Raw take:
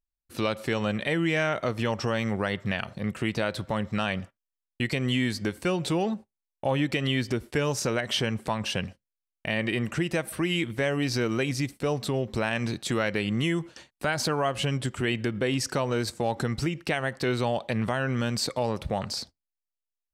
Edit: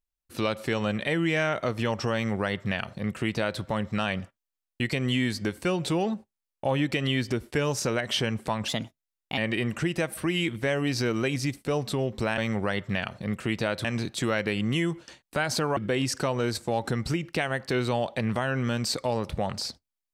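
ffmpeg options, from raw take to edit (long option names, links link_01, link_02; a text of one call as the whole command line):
ffmpeg -i in.wav -filter_complex "[0:a]asplit=6[link_01][link_02][link_03][link_04][link_05][link_06];[link_01]atrim=end=8.684[link_07];[link_02]atrim=start=8.68:end=9.53,asetpts=PTS-STARTPTS,asetrate=53802,aresample=44100,atrim=end_sample=30725,asetpts=PTS-STARTPTS[link_08];[link_03]atrim=start=9.526:end=12.532[link_09];[link_04]atrim=start=2.138:end=3.612[link_10];[link_05]atrim=start=12.528:end=14.452[link_11];[link_06]atrim=start=15.288[link_12];[link_07][link_08]acrossfade=duration=0.004:curve1=hsin:curve2=hsin[link_13];[link_13][link_09]acrossfade=duration=0.004:curve1=hsin:curve2=hsin[link_14];[link_14][link_10]acrossfade=duration=0.004:curve1=hsin:curve2=hsin[link_15];[link_15][link_11]acrossfade=duration=0.004:curve1=hsin:curve2=hsin[link_16];[link_16][link_12]acrossfade=duration=0.004:curve1=hsin:curve2=hsin" out.wav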